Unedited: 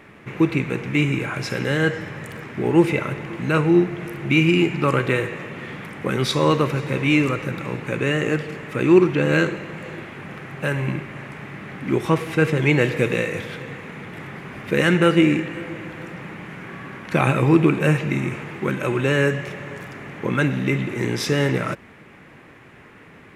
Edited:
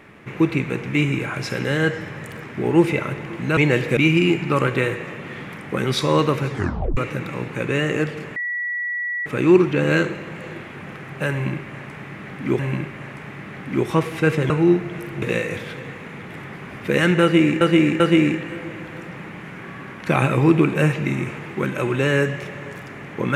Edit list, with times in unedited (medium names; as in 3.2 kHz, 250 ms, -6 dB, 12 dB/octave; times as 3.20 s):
3.57–4.29 s: swap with 12.65–13.05 s
6.82 s: tape stop 0.47 s
8.68 s: add tone 1.94 kHz -22.5 dBFS 0.90 s
10.74–12.01 s: loop, 2 plays
15.05–15.44 s: loop, 3 plays